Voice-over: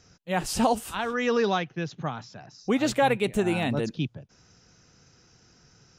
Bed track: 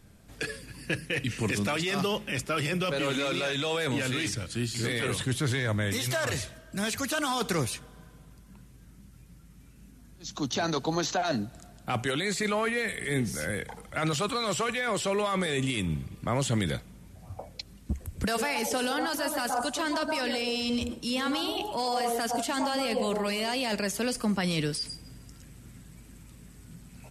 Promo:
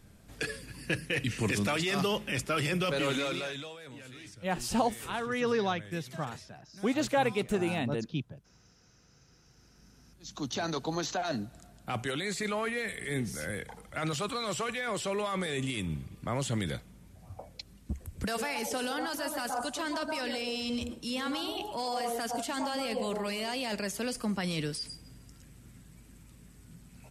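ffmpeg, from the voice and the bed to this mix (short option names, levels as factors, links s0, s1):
-filter_complex "[0:a]adelay=4150,volume=0.562[s0];[1:a]volume=4.47,afade=t=out:st=3.1:d=0.65:silence=0.133352,afade=t=in:st=9.25:d=1.23:silence=0.199526[s1];[s0][s1]amix=inputs=2:normalize=0"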